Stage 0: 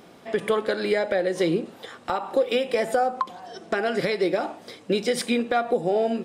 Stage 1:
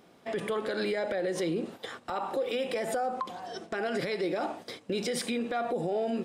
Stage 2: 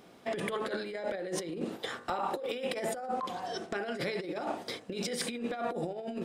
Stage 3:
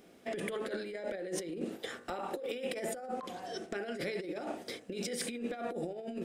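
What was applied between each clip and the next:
limiter -23 dBFS, peak gain reduction 11 dB; gate -43 dBFS, range -9 dB
de-hum 54.17 Hz, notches 37; negative-ratio compressor -34 dBFS, ratio -0.5
graphic EQ 125/1000/4000 Hz -7/-10/-5 dB

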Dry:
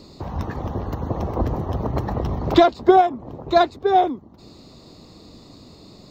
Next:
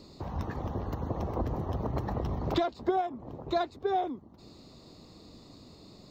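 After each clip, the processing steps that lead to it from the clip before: compressor 3:1, threshold -20 dBFS, peak gain reduction 9.5 dB; gain -7 dB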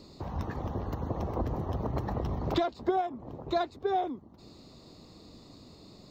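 nothing audible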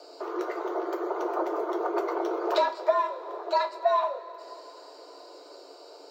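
two-slope reverb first 0.23 s, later 4 s, from -21 dB, DRR 2.5 dB; frequency shift +280 Hz; gain +2 dB

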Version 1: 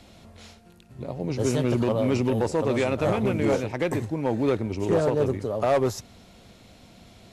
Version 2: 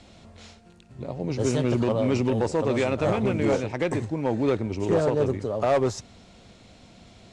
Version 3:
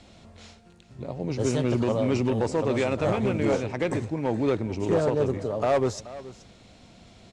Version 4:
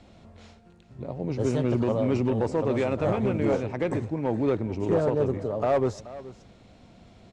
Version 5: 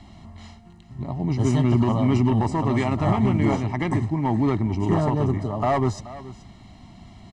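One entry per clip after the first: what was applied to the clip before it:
steep low-pass 9100 Hz 36 dB/oct
echo 0.428 s -17 dB; gain -1 dB
high shelf 2500 Hz -9.5 dB
comb 1 ms, depth 88%; gain +3.5 dB

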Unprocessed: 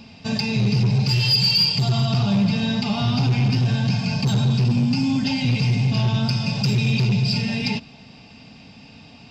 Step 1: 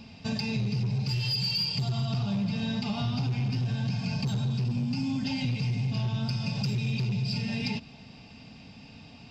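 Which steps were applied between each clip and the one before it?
low shelf 130 Hz +5 dB; compressor 3:1, threshold -23 dBFS, peak gain reduction 8 dB; gain -5 dB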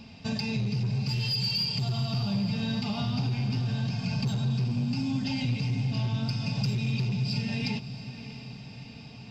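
diffused feedback echo 0.664 s, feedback 59%, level -13 dB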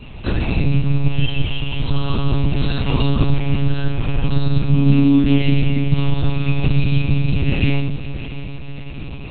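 reverb RT60 0.60 s, pre-delay 4 ms, DRR -6.5 dB; monotone LPC vocoder at 8 kHz 140 Hz; gain +4.5 dB

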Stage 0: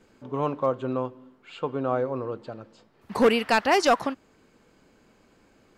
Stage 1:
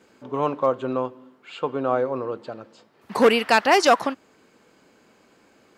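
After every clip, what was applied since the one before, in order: HPF 260 Hz 6 dB/oct; gain +4.5 dB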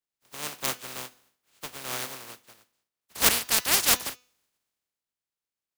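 spectral contrast lowered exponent 0.15; de-hum 248.6 Hz, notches 28; three-band expander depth 70%; gain -10.5 dB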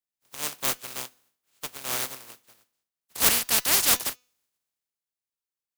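high shelf 6300 Hz +5.5 dB; in parallel at -6 dB: fuzz box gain 32 dB, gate -32 dBFS; on the sum: gain -6 dB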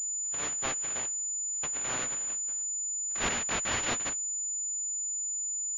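compressor 1.5:1, threshold -38 dBFS, peak gain reduction 8.5 dB; pulse-width modulation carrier 7000 Hz

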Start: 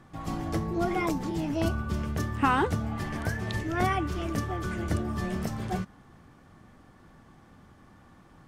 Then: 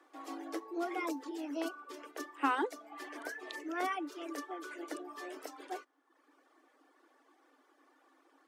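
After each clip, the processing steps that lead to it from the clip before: reverb removal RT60 0.86 s; Chebyshev high-pass 270 Hz, order 8; gain -6 dB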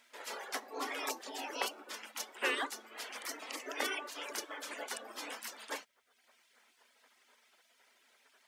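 spectral gate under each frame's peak -15 dB weak; gain +10.5 dB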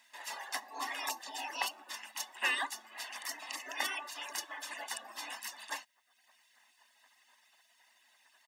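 low shelf 420 Hz -10.5 dB; comb 1.1 ms, depth 74%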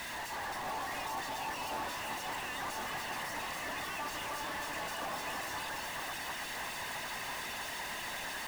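infinite clipping; high shelf 2400 Hz -9.5 dB; echo with dull and thin repeats by turns 0.325 s, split 2100 Hz, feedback 78%, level -5 dB; gain +5.5 dB

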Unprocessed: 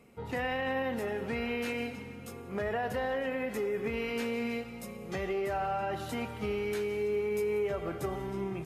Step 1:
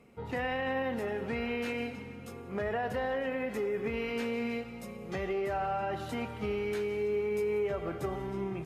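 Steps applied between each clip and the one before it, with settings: high shelf 6200 Hz -7.5 dB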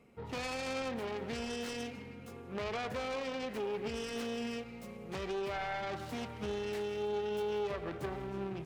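self-modulated delay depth 0.31 ms; gain -3.5 dB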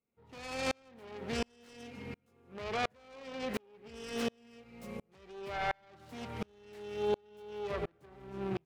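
dB-ramp tremolo swelling 1.4 Hz, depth 38 dB; gain +8 dB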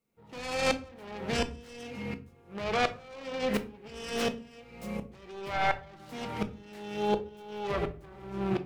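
shoebox room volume 270 m³, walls furnished, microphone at 0.71 m; gain +6 dB

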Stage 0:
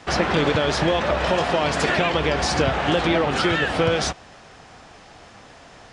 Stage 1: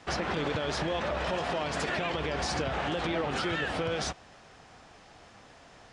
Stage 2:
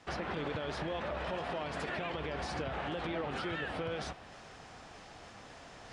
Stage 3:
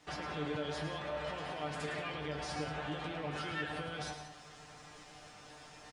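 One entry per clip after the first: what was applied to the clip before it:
limiter -13.5 dBFS, peak gain reduction 6.5 dB; gain -8 dB
dynamic EQ 6600 Hz, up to -8 dB, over -53 dBFS, Q 1; reverse; upward compressor, threshold -36 dBFS; reverse; gain -6 dB
high shelf 5200 Hz +8.5 dB; resonator 150 Hz, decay 0.18 s, harmonics all, mix 90%; on a send: tapped delay 0.108/0.18 s -8.5/-12.5 dB; on the sum: gain +4.5 dB

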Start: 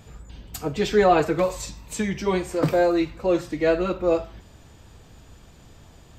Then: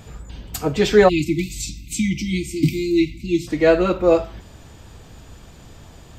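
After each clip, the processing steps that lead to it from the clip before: spectral delete 1.08–3.48, 350–2000 Hz; gain +6 dB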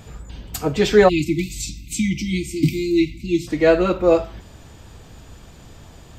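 nothing audible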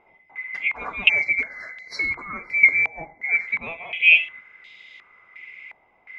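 band-swap scrambler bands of 2000 Hz; stepped low-pass 2.8 Hz 820–3700 Hz; gain -8 dB

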